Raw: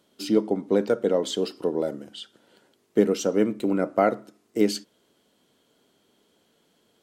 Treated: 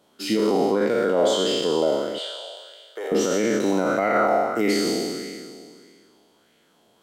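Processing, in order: spectral trails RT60 2.11 s; limiter -13 dBFS, peak gain reduction 7 dB; 2.18–3.12 inverse Chebyshev high-pass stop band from 160 Hz, stop band 60 dB; LFO bell 1.6 Hz 720–2200 Hz +9 dB

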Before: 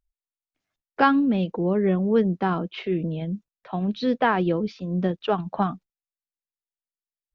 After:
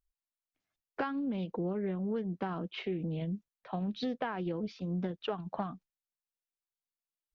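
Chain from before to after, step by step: compressor 12:1, threshold -25 dBFS, peak gain reduction 14 dB; Doppler distortion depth 0.16 ms; gain -5.5 dB

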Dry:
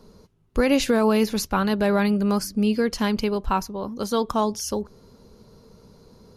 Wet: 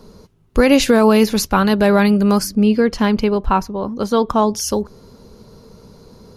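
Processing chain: 2.55–4.55 high shelf 4300 Hz -11.5 dB; gain +7.5 dB

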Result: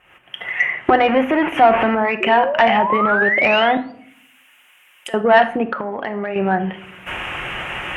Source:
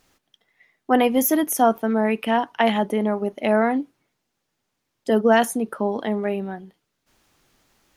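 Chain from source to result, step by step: 1.08–1.95 zero-crossing step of -22.5 dBFS; recorder AGC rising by 63 dB/s; 2.2–3.92 painted sound rise 360–4800 Hz -27 dBFS; EQ curve 110 Hz 0 dB, 230 Hz -8 dB, 580 Hz +1 dB, 2900 Hz +9 dB, 4300 Hz -29 dB, 9100 Hz -12 dB; soft clip -10 dBFS, distortion -14 dB; treble ducked by the level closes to 2300 Hz, closed at -19 dBFS; 3.77–5.14 differentiator; reverb RT60 0.65 s, pre-delay 6 ms, DRR 8 dB; 5.67–6.36 compressor 6:1, threshold -26 dBFS, peak gain reduction 8 dB; HPF 44 Hz; gain +4.5 dB

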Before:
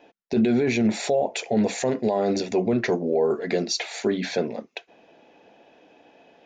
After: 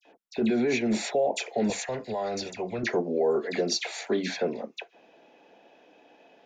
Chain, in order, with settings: dispersion lows, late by 56 ms, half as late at 2100 Hz; bell 81 Hz -12.5 dB 1.8 oct, from 1.7 s 270 Hz, from 2.83 s 73 Hz; gain -2 dB

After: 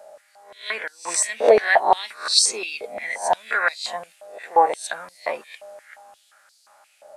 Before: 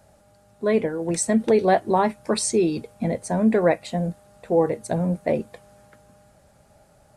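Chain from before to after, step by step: spectral swells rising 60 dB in 0.37 s; stepped high-pass 5.7 Hz 600–4500 Hz; gain +2 dB

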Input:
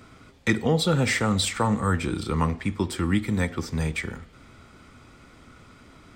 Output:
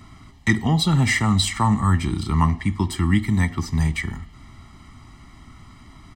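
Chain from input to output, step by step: low shelf 70 Hz +6.5 dB; comb 1 ms, depth 91%

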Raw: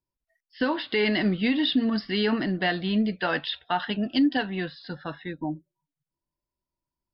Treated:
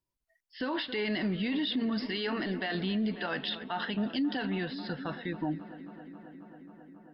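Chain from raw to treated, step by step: 2.07–2.75 bell 120 Hz -9.5 dB 2.5 oct; on a send: darkening echo 0.27 s, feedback 83%, low-pass 3800 Hz, level -19.5 dB; on the sum: limiter -24 dBFS, peak gain reduction 11 dB

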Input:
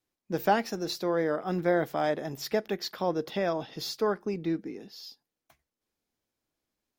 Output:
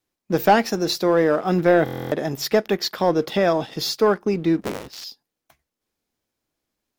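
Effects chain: 4.61–5.04 cycle switcher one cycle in 3, inverted; sample leveller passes 1; stuck buffer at 1.84, samples 1024, times 11; gain +6.5 dB

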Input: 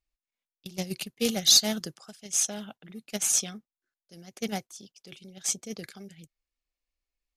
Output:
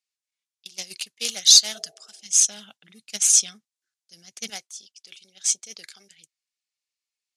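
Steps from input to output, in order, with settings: weighting filter ITU-R 468; 1.77–2.27 spectral repair 320–810 Hz both; 2.14–4.5 tone controls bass +13 dB, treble +2 dB; gain -5 dB

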